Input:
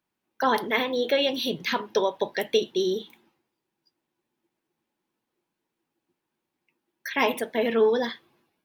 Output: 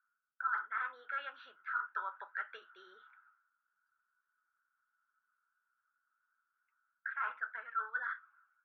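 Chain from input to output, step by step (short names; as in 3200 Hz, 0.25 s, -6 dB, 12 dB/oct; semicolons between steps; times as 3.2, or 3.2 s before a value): Butterworth band-pass 1400 Hz, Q 6.9; reverse; compressor 5:1, threshold -51 dBFS, peak gain reduction 20.5 dB; reverse; gain +16 dB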